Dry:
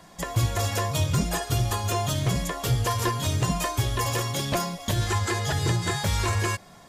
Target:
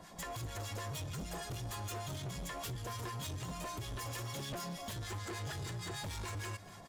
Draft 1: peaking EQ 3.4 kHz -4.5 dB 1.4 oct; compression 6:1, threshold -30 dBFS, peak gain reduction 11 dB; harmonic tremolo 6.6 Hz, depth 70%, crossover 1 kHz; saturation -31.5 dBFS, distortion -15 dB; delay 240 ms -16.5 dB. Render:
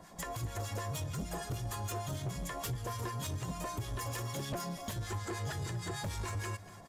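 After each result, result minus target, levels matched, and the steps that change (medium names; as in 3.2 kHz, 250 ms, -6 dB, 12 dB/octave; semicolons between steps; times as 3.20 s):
saturation: distortion -6 dB; 4 kHz band -3.5 dB
change: saturation -38.5 dBFS, distortion -8 dB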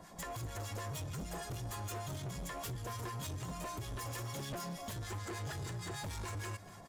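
4 kHz band -2.5 dB
remove: peaking EQ 3.4 kHz -4.5 dB 1.4 oct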